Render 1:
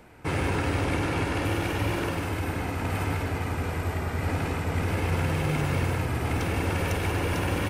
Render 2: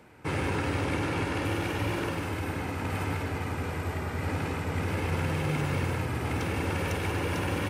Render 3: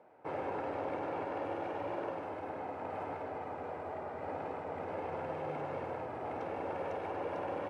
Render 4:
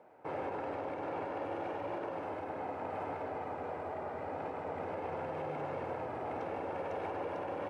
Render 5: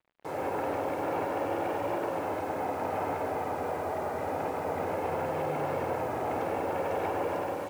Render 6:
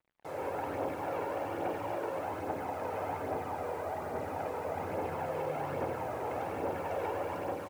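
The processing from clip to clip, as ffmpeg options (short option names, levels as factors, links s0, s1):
-af "highpass=75,highshelf=f=11000:g=-4,bandreject=f=690:w=14,volume=0.794"
-af "bandpass=f=660:t=q:w=2.6:csg=0,volume=1.26"
-af "alimiter=level_in=2.24:limit=0.0631:level=0:latency=1:release=81,volume=0.447,volume=1.19"
-af "dynaudnorm=f=150:g=5:m=2.37,acrusher=bits=7:mix=0:aa=0.5"
-af "aecho=1:1:84:0.15,aphaser=in_gain=1:out_gain=1:delay=2.3:decay=0.36:speed=1.2:type=triangular,volume=0.562"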